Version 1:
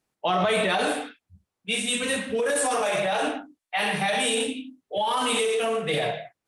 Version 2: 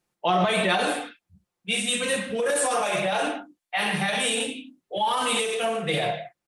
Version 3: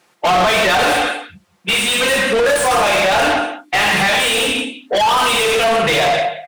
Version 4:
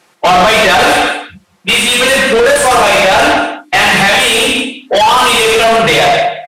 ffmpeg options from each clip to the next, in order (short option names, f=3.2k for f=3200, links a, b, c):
-af "aecho=1:1:5.7:0.44"
-filter_complex "[0:a]aecho=1:1:180:0.126,asplit=2[a][b];[b]highpass=f=720:p=1,volume=31dB,asoftclip=type=tanh:threshold=-9dB[c];[a][c]amix=inputs=2:normalize=0,lowpass=f=3.4k:p=1,volume=-6dB,volume=2dB"
-af "aresample=32000,aresample=44100,volume=6dB"